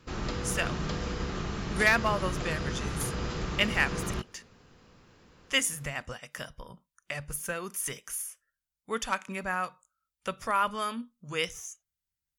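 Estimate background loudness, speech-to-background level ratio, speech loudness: -34.5 LUFS, 3.0 dB, -31.5 LUFS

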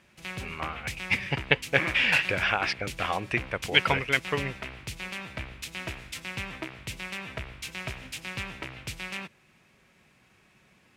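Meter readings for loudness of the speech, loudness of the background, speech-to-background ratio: -26.5 LUFS, -37.0 LUFS, 10.5 dB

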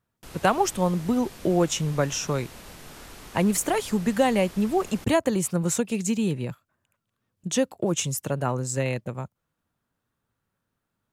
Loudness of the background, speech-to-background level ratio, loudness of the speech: -44.0 LUFS, 18.5 dB, -25.5 LUFS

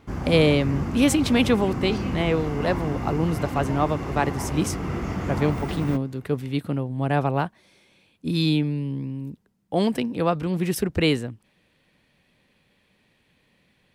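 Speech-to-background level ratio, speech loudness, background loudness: 5.5 dB, -24.5 LUFS, -30.0 LUFS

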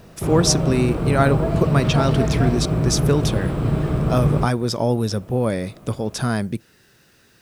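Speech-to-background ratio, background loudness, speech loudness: -0.5 dB, -21.5 LUFS, -22.0 LUFS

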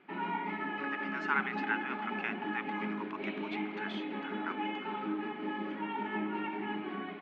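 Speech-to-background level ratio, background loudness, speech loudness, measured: -2.0 dB, -37.5 LUFS, -39.5 LUFS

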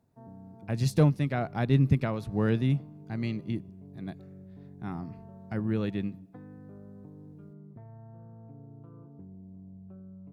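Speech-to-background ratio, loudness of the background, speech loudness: 20.0 dB, -49.0 LUFS, -29.0 LUFS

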